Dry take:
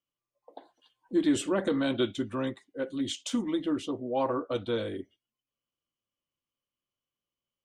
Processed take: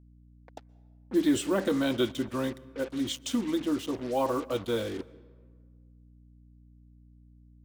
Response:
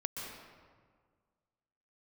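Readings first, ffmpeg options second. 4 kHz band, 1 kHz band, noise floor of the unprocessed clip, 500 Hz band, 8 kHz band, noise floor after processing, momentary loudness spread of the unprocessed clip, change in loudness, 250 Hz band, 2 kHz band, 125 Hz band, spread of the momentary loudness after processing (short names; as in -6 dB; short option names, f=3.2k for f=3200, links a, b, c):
+1.0 dB, +1.0 dB, under -85 dBFS, +0.5 dB, +1.5 dB, -56 dBFS, 9 LU, +0.5 dB, +0.5 dB, +1.0 dB, +1.0 dB, 9 LU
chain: -filter_complex "[0:a]acrusher=bits=6:mix=0:aa=0.5,aeval=exprs='val(0)+0.00178*(sin(2*PI*60*n/s)+sin(2*PI*2*60*n/s)/2+sin(2*PI*3*60*n/s)/3+sin(2*PI*4*60*n/s)/4+sin(2*PI*5*60*n/s)/5)':c=same,asplit=2[a][b];[1:a]atrim=start_sample=2205[c];[b][c]afir=irnorm=-1:irlink=0,volume=-20dB[d];[a][d]amix=inputs=2:normalize=0"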